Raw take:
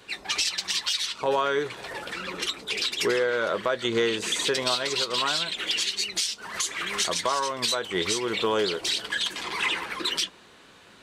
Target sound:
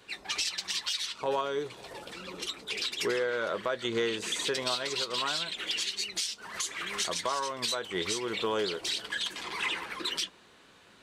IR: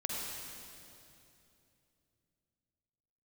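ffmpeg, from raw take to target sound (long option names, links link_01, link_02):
-filter_complex "[0:a]asettb=1/sr,asplit=3[link_01][link_02][link_03];[link_01]atrim=end=1.414[link_04];[link_02]atrim=start=1.41:end=2.5,asetpts=PTS-STARTPTS,afade=type=in:duration=0.004:curve=qsin,afade=type=out:start_time=1.086:duration=0.004:curve=qsin,equalizer=frequency=1700:width=1.4:gain=-8.5[link_05];[link_03]atrim=start=2.496[link_06];[link_04][link_05]acrossfade=duration=0.004:curve1=hsin:curve2=qsin[link_07];[link_07][link_06]acrossfade=duration=0.004:curve1=qsin:curve2=hsin,volume=-5.5dB"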